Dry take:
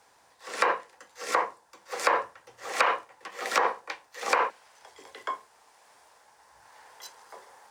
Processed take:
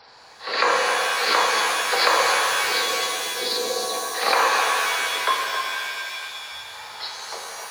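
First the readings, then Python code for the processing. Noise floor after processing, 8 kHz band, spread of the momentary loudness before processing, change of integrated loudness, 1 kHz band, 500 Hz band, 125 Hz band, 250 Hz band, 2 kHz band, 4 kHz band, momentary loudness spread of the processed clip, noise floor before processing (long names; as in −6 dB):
−45 dBFS, +14.5 dB, 19 LU, +8.0 dB, +7.0 dB, +7.5 dB, can't be measured, +7.0 dB, +10.5 dB, +17.5 dB, 14 LU, −62 dBFS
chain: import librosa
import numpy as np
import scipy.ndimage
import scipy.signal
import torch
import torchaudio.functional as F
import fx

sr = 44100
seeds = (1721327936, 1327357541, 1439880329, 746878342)

p1 = fx.freq_compress(x, sr, knee_hz=3800.0, ratio=4.0)
p2 = fx.peak_eq(p1, sr, hz=300.0, db=-3.5, octaves=0.91)
p3 = fx.over_compress(p2, sr, threshold_db=-31.0, ratio=-1.0)
p4 = p2 + F.gain(torch.from_numpy(p3), 2.5).numpy()
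p5 = fx.spec_box(p4, sr, start_s=2.57, length_s=1.37, low_hz=520.0, high_hz=3600.0, gain_db=-27)
p6 = p5 + fx.echo_single(p5, sr, ms=267, db=-8.5, dry=0)
p7 = fx.rev_shimmer(p6, sr, seeds[0], rt60_s=2.6, semitones=7, shimmer_db=-2, drr_db=1.5)
y = F.gain(torch.from_numpy(p7), 1.0).numpy()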